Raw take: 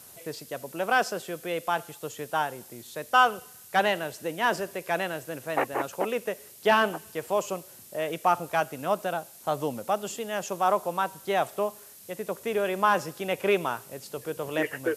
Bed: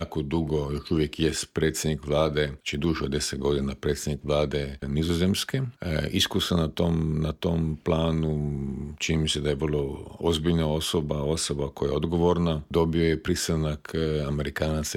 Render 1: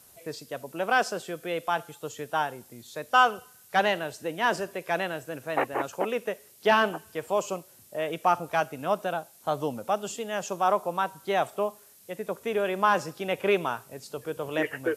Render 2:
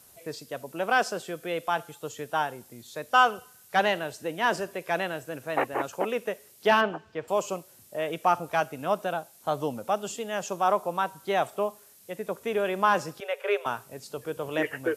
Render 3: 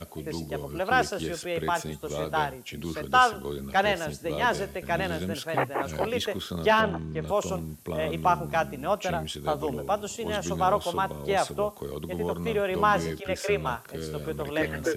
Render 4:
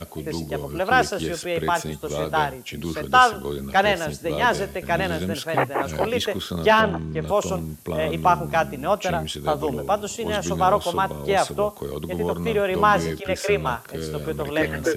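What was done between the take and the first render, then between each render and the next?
noise print and reduce 6 dB
6.81–7.28 air absorption 180 m; 13.2–13.66 rippled Chebyshev high-pass 400 Hz, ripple 6 dB
add bed -9.5 dB
gain +5 dB

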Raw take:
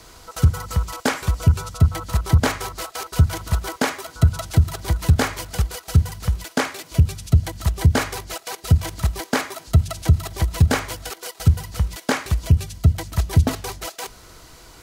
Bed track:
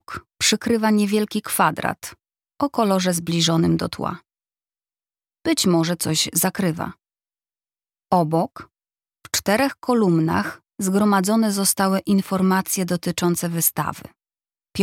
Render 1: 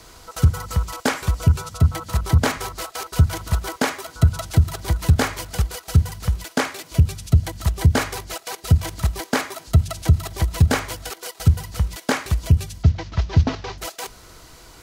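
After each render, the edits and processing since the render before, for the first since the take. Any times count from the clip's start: 1.48–2.57 notches 50/100/150/200/250 Hz; 12.83–13.78 CVSD 32 kbps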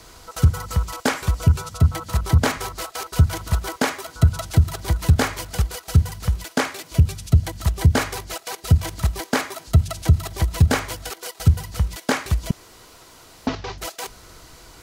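12.51–13.47 room tone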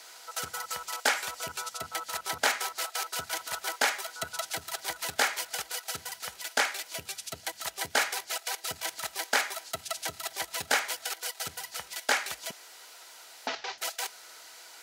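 Chebyshev high-pass 930 Hz, order 2; bell 1100 Hz -11.5 dB 0.29 oct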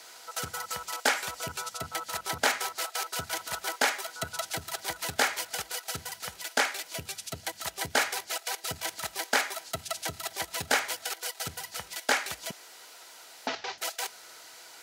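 HPF 56 Hz; low shelf 280 Hz +9.5 dB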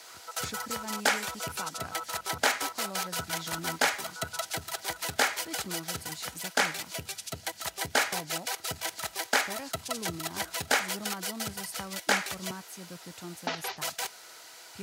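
add bed track -23 dB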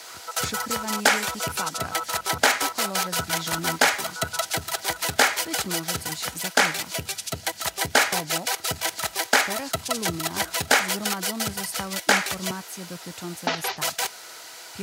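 gain +7.5 dB; limiter -3 dBFS, peak gain reduction 2.5 dB

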